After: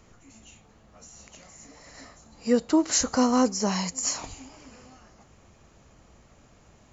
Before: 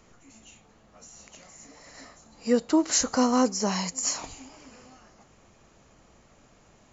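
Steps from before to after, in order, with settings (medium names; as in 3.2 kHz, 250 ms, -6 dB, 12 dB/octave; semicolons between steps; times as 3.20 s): peaking EQ 67 Hz +6.5 dB 2 oct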